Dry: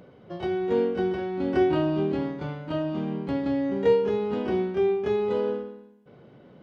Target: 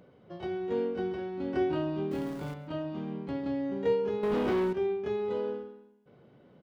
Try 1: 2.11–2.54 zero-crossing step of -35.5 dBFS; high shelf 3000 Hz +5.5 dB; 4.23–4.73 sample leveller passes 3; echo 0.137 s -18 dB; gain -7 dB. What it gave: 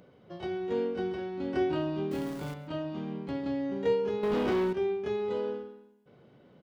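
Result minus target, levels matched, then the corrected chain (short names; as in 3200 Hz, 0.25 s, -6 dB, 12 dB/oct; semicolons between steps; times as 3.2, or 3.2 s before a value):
8000 Hz band +4.0 dB
2.11–2.54 zero-crossing step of -35.5 dBFS; 4.23–4.73 sample leveller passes 3; echo 0.137 s -18 dB; gain -7 dB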